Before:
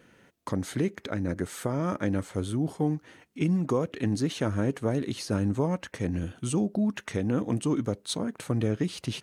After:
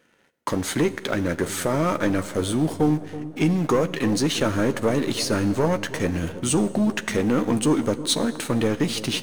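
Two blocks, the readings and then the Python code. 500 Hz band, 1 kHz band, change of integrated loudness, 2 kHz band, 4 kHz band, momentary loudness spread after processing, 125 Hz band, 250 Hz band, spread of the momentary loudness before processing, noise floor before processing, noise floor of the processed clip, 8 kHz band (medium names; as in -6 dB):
+7.5 dB, +9.0 dB, +6.5 dB, +10.5 dB, +11.0 dB, 4 LU, +2.5 dB, +5.5 dB, 5 LU, -63 dBFS, -46 dBFS, +11.0 dB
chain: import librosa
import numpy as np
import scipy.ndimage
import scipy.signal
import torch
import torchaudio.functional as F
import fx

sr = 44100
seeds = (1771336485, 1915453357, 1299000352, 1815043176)

p1 = fx.low_shelf(x, sr, hz=230.0, db=-10.5)
p2 = fx.leveller(p1, sr, passes=2)
p3 = np.where(np.abs(p2) >= 10.0 ** (-34.0 / 20.0), p2, 0.0)
p4 = p2 + (p3 * 10.0 ** (-5.0 / 20.0))
p5 = fx.doubler(p4, sr, ms=13.0, db=-10.5)
p6 = p5 + fx.echo_wet_lowpass(p5, sr, ms=328, feedback_pct=56, hz=910.0, wet_db=-14.0, dry=0)
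y = fx.rev_schroeder(p6, sr, rt60_s=1.5, comb_ms=32, drr_db=16.5)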